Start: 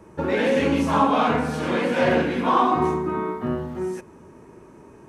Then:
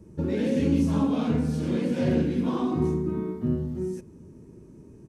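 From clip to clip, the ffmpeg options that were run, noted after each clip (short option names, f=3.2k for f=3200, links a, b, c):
-af "firequalizer=gain_entry='entry(150,0);entry(740,-20);entry(1100,-22);entry(4800,-9)':delay=0.05:min_phase=1,volume=3.5dB"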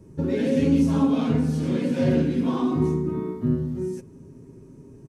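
-af "aecho=1:1:7.4:0.44,volume=1.5dB"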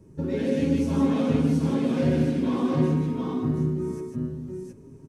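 -af "aecho=1:1:150|718:0.596|0.668,volume=-3.5dB"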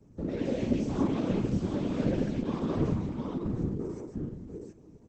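-af "afftfilt=real='hypot(re,im)*cos(2*PI*random(0))':imag='hypot(re,im)*sin(2*PI*random(1))':win_size=512:overlap=0.75" -ar 48000 -c:a libopus -b:a 10k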